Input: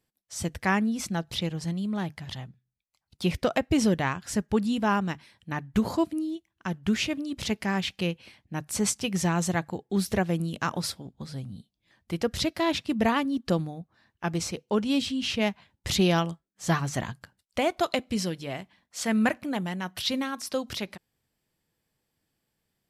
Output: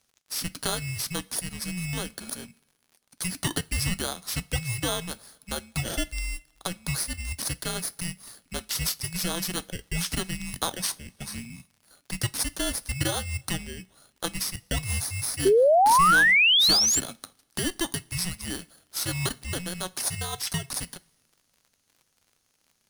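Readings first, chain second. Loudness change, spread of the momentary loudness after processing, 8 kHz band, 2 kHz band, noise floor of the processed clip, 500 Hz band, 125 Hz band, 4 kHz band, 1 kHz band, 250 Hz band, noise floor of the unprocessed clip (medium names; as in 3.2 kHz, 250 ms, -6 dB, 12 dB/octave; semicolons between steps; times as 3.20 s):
+2.5 dB, 19 LU, +8.0 dB, +6.5 dB, -72 dBFS, +1.0 dB, -1.0 dB, +7.0 dB, +4.0 dB, -9.0 dB, -81 dBFS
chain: bit-reversed sample order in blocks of 16 samples; RIAA curve recording; compression 2:1, threshold -24 dBFS, peak gain reduction 11 dB; two-slope reverb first 0.25 s, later 1.7 s, from -21 dB, DRR 15.5 dB; frequency shift -360 Hz; short-mantissa float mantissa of 4-bit; painted sound rise, 15.45–17.00 s, 370–7800 Hz -24 dBFS; distance through air 67 m; crackle 71 per s -54 dBFS; trim +6.5 dB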